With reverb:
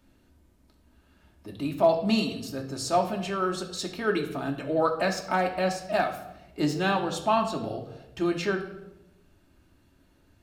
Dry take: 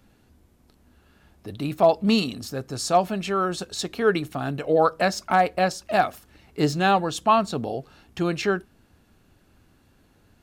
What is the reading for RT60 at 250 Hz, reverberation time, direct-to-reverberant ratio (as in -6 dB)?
1.1 s, 1.0 s, 1.5 dB